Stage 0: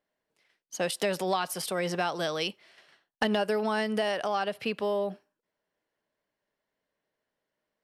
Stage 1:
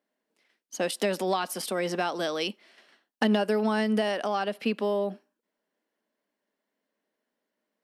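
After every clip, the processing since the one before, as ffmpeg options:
-af "lowshelf=f=160:t=q:w=3:g=-12"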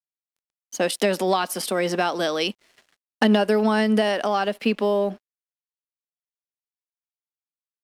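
-af "aeval=exprs='sgn(val(0))*max(abs(val(0))-0.00133,0)':c=same,volume=6dB"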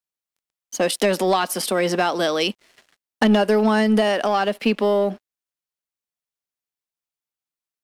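-af "asoftclip=type=tanh:threshold=-12dB,volume=3.5dB"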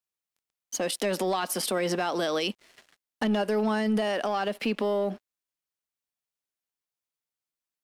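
-af "alimiter=limit=-18dB:level=0:latency=1:release=110,volume=-1.5dB"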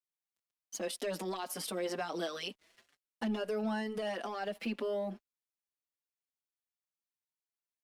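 -filter_complex "[0:a]asplit=2[a][b];[b]adelay=5.3,afreqshift=2.1[c];[a][c]amix=inputs=2:normalize=1,volume=-6.5dB"

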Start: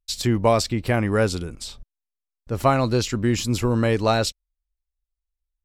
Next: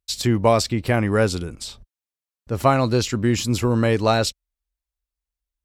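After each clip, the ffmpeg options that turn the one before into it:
-af "highpass=42,volume=1.5dB"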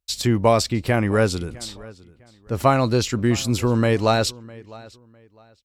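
-filter_complex "[0:a]asplit=2[a][b];[b]adelay=655,lowpass=f=4.8k:p=1,volume=-21.5dB,asplit=2[c][d];[d]adelay=655,lowpass=f=4.8k:p=1,volume=0.27[e];[a][c][e]amix=inputs=3:normalize=0"

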